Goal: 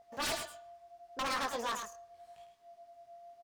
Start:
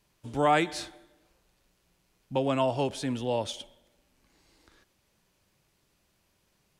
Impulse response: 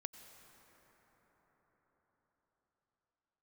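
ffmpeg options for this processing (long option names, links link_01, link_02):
-af "bass=frequency=250:gain=-7,treble=frequency=4000:gain=-10,asetrate=87318,aresample=44100,aeval=exprs='val(0)+0.00316*sin(2*PI*690*n/s)':channel_layout=same,flanger=delay=18:depth=6.7:speed=0.78,aeval=exprs='0.0335*(abs(mod(val(0)/0.0335+3,4)-2)-1)':channel_layout=same,aecho=1:1:104:0.422"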